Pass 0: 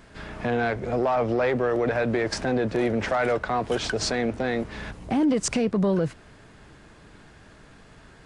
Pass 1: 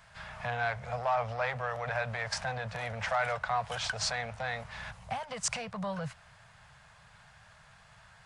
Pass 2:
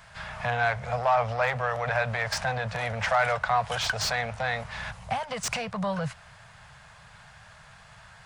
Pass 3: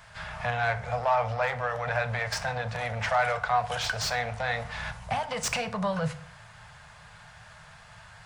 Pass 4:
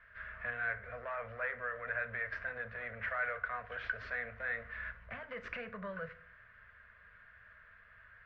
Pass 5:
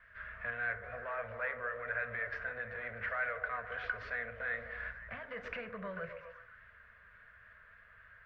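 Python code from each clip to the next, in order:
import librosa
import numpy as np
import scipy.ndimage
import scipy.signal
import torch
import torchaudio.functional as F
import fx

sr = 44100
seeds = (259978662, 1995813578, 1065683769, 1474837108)

y1 = scipy.signal.sosfilt(scipy.signal.cheby1(2, 1.0, [130.0, 760.0], 'bandstop', fs=sr, output='sos'), x)
y1 = fx.low_shelf(y1, sr, hz=70.0, db=-12.0)
y1 = y1 * 10.0 ** (-3.0 / 20.0)
y2 = fx.slew_limit(y1, sr, full_power_hz=120.0)
y2 = y2 * 10.0 ** (6.5 / 20.0)
y3 = fx.rider(y2, sr, range_db=3, speed_s=2.0)
y3 = fx.rev_fdn(y3, sr, rt60_s=0.56, lf_ratio=1.25, hf_ratio=0.7, size_ms=20.0, drr_db=8.5)
y3 = y3 * 10.0 ** (-2.0 / 20.0)
y4 = fx.ladder_lowpass(y3, sr, hz=2000.0, resonance_pct=50)
y4 = fx.fixed_phaser(y4, sr, hz=340.0, stages=4)
y4 = y4 * 10.0 ** (1.0 / 20.0)
y5 = fx.vibrato(y4, sr, rate_hz=3.5, depth_cents=31.0)
y5 = fx.echo_stepped(y5, sr, ms=128, hz=390.0, octaves=0.7, feedback_pct=70, wet_db=-4.5)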